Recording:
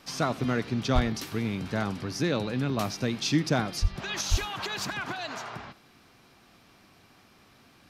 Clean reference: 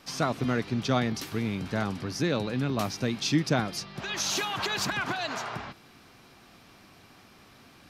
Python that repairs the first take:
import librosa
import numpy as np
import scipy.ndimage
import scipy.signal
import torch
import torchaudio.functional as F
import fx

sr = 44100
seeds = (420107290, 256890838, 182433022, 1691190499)

y = fx.fix_declip(x, sr, threshold_db=-13.5)
y = fx.fix_deplosive(y, sr, at_s=(0.94, 3.81, 4.3))
y = fx.fix_echo_inverse(y, sr, delay_ms=86, level_db=-20.5)
y = fx.gain(y, sr, db=fx.steps((0.0, 0.0), (4.21, 3.5)))